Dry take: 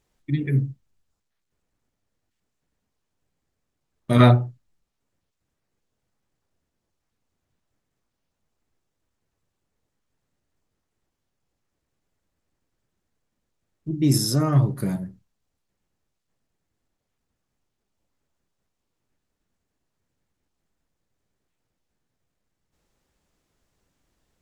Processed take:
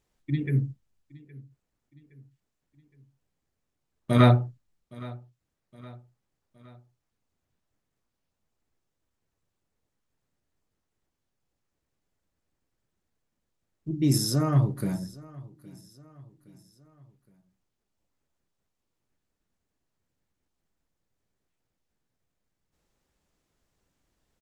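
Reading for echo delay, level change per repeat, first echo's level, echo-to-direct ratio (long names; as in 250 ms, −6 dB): 816 ms, −6.5 dB, −21.5 dB, −20.5 dB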